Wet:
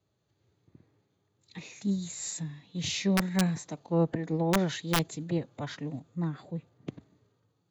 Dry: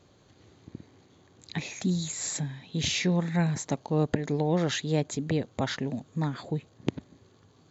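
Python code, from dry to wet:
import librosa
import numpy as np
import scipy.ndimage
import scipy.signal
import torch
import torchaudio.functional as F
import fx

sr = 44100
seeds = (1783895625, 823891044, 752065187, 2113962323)

y = fx.hpss(x, sr, part='harmonic', gain_db=6)
y = fx.cheby_harmonics(y, sr, harmonics=(2,), levels_db=(-27,), full_scale_db=-8.0)
y = fx.pitch_keep_formants(y, sr, semitones=1.5)
y = (np.mod(10.0 ** (11.0 / 20.0) * y + 1.0, 2.0) - 1.0) / 10.0 ** (11.0 / 20.0)
y = fx.band_widen(y, sr, depth_pct=40)
y = y * 10.0 ** (-7.5 / 20.0)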